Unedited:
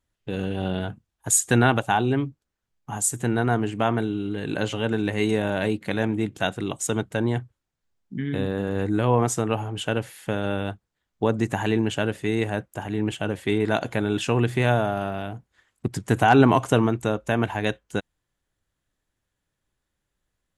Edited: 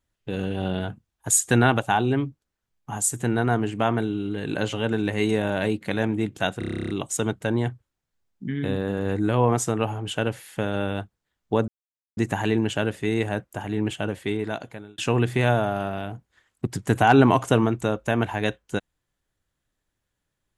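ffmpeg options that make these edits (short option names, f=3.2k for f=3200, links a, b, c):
-filter_complex "[0:a]asplit=13[a][b][c][d][e][f][g][h][i][j][k][l][m];[a]atrim=end=6.622[n];[b]atrim=start=6.588:end=6.622[o];[c]atrim=start=6.588:end=6.622[p];[d]atrim=start=6.588:end=6.622[q];[e]atrim=start=6.588:end=6.622[r];[f]atrim=start=6.588:end=6.622[s];[g]atrim=start=6.588:end=6.622[t];[h]atrim=start=6.588:end=6.622[u];[i]atrim=start=6.588:end=6.622[v];[j]atrim=start=6.588:end=6.622[w];[k]atrim=start=6.588:end=11.38,asetpts=PTS-STARTPTS,afade=t=out:st=4.788:d=0.004:c=hsin,apad=pad_dur=0.49[x];[l]atrim=start=11.38:end=14.19,asetpts=PTS-STARTPTS,afade=t=in:d=0.004:c=hsin,afade=t=out:st=1.81:d=1[y];[m]atrim=start=14.19,asetpts=PTS-STARTPTS,afade=t=in:d=0.004:c=hsin[z];[n][o]acrossfade=d=0.004:c1=hsin:c2=hsin[aa];[aa][p]acrossfade=d=0.004:c1=hsin:c2=hsin[ab];[ab][q]acrossfade=d=0.004:c1=hsin:c2=hsin[ac];[ac][r]acrossfade=d=0.004:c1=hsin:c2=hsin[ad];[ad][s]acrossfade=d=0.004:c1=hsin:c2=hsin[ae];[ae][t]acrossfade=d=0.004:c1=hsin:c2=hsin[af];[af][u]acrossfade=d=0.004:c1=hsin:c2=hsin[ag];[ag][v]acrossfade=d=0.004:c1=hsin:c2=hsin[ah];[ah][w]acrossfade=d=0.004:c1=hsin:c2=hsin[ai];[x][y][z]concat=n=3:v=0:a=1[aj];[ai][aj]acrossfade=d=0.004:c1=hsin:c2=hsin"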